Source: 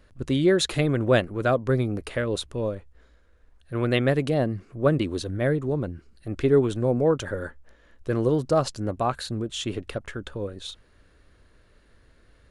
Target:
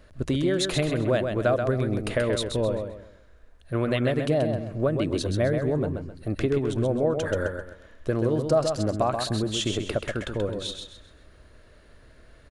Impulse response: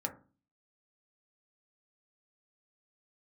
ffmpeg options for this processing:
-af "acompressor=threshold=-25dB:ratio=10,equalizer=frequency=630:width=6.2:gain=7,aecho=1:1:131|262|393|524:0.501|0.16|0.0513|0.0164,volume=3.5dB"

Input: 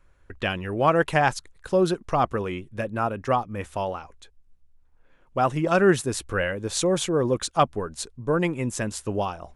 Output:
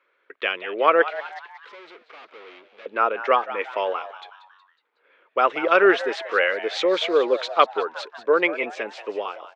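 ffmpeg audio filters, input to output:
ffmpeg -i in.wav -filter_complex "[0:a]dynaudnorm=framelen=110:gausssize=13:maxgain=5dB,asettb=1/sr,asplit=3[link_01][link_02][link_03];[link_01]atrim=end=1.084[link_04];[link_02]atrim=start=1.08:end=2.86,asetpts=PTS-STARTPTS,afade=type=in:duration=0.004:curve=qsin,afade=type=out:start_time=1.776:duration=0.004:curve=qsin,aeval=exprs='(tanh(126*val(0)+0.6)-tanh(0.6))/126':channel_layout=same[link_05];[link_03]atrim=start=2.856[link_06];[link_04][link_05]acrossfade=duration=0.004:curve1=hsin:curve2=qsin[link_07];[link_07][link_06]acrossfade=duration=0.004:curve1=qsin:curve2=hsin,asettb=1/sr,asplit=3[link_08][link_09][link_10];[link_08]atrim=end=8.634[link_11];[link_09]atrim=start=8.63:end=9.25,asetpts=PTS-STARTPTS,afade=type=in:duration=0.004:curve=qsin,afade=type=out:start_time=0.616:duration=0.004:curve=qsin,acrossover=split=490[link_12][link_13];[link_13]acompressor=threshold=-30dB:ratio=2.5[link_14];[link_12][link_14]amix=inputs=2:normalize=0[link_15];[link_10]atrim=start=9.246[link_16];[link_11][link_15]acrossfade=duration=0.004:curve1=hsin:curve2=qsin[link_17];[link_17][link_16]acrossfade=duration=0.004:curve1=qsin:curve2=hsin,highpass=frequency=380:width=0.5412,highpass=frequency=380:width=1.3066,equalizer=frequency=450:width_type=q:width=4:gain=5,equalizer=frequency=760:width_type=q:width=4:gain=-5,equalizer=frequency=1300:width_type=q:width=4:gain=5,equalizer=frequency=2200:width_type=q:width=4:gain=9,equalizer=frequency=3300:width_type=q:width=4:gain=4,lowpass=frequency=4100:width=0.5412,lowpass=frequency=4100:width=1.3066,asplit=5[link_18][link_19][link_20][link_21][link_22];[link_19]adelay=184,afreqshift=130,volume=-14dB[link_23];[link_20]adelay=368,afreqshift=260,volume=-20.6dB[link_24];[link_21]adelay=552,afreqshift=390,volume=-27.1dB[link_25];[link_22]adelay=736,afreqshift=520,volume=-33.7dB[link_26];[link_18][link_23][link_24][link_25][link_26]amix=inputs=5:normalize=0,volume=-1dB" out.wav

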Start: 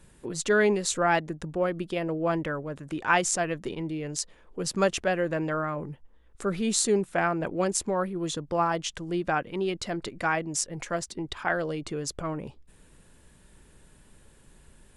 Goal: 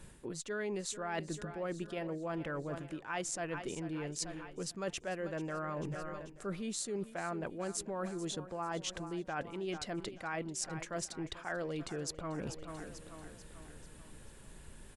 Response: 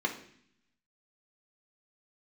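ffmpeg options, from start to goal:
-af "aecho=1:1:440|880|1320|1760|2200:0.15|0.0763|0.0389|0.0198|0.0101,areverse,acompressor=threshold=-39dB:ratio=6,areverse,volume=2dB"

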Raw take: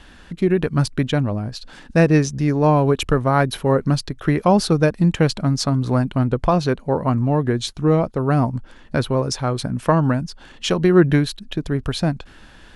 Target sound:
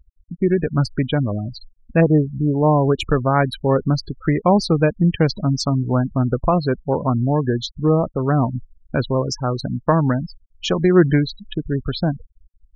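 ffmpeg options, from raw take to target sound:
ffmpeg -i in.wav -filter_complex "[0:a]asplit=3[link_01][link_02][link_03];[link_01]afade=type=out:start_time=2:duration=0.02[link_04];[link_02]lowpass=frequency=1200:width=0.5412,lowpass=frequency=1200:width=1.3066,afade=type=in:start_time=2:duration=0.02,afade=type=out:start_time=2.88:duration=0.02[link_05];[link_03]afade=type=in:start_time=2.88:duration=0.02[link_06];[link_04][link_05][link_06]amix=inputs=3:normalize=0,afftfilt=real='re*gte(hypot(re,im),0.0708)':imag='im*gte(hypot(re,im),0.0708)':win_size=1024:overlap=0.75" out.wav

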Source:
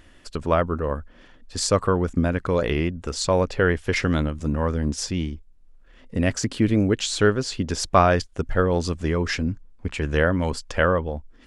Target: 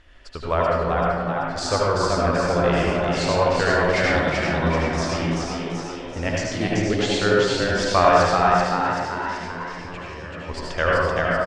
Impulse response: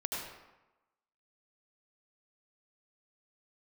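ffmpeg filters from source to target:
-filter_complex "[0:a]lowpass=5200,equalizer=frequency=210:width=0.87:gain=-10,asettb=1/sr,asplit=3[link_01][link_02][link_03];[link_01]atrim=end=8.414[link_04];[link_02]atrim=start=8.41:end=10.49,asetpts=PTS-STARTPTS,afade=type=in:duration=0.004:curve=qsin,afade=type=out:start_time=2.076:duration=0.004:curve=qsin,acompressor=threshold=-37dB:ratio=10[link_05];[link_03]atrim=start=10.486[link_06];[link_04][link_05]acrossfade=duration=0.004:curve1=hsin:curve2=qsin[link_07];[link_07][link_06]acrossfade=duration=0.004:curve1=qsin:curve2=hsin,asplit=9[link_08][link_09][link_10][link_11][link_12][link_13][link_14][link_15][link_16];[link_09]adelay=384,afreqshift=90,volume=-3dB[link_17];[link_10]adelay=768,afreqshift=180,volume=-8.2dB[link_18];[link_11]adelay=1152,afreqshift=270,volume=-13.4dB[link_19];[link_12]adelay=1536,afreqshift=360,volume=-18.6dB[link_20];[link_13]adelay=1920,afreqshift=450,volume=-23.8dB[link_21];[link_14]adelay=2304,afreqshift=540,volume=-29dB[link_22];[link_15]adelay=2688,afreqshift=630,volume=-34.2dB[link_23];[link_16]adelay=3072,afreqshift=720,volume=-39.3dB[link_24];[link_08][link_17][link_18][link_19][link_20][link_21][link_22][link_23][link_24]amix=inputs=9:normalize=0[link_25];[1:a]atrim=start_sample=2205[link_26];[link_25][link_26]afir=irnorm=-1:irlink=0"

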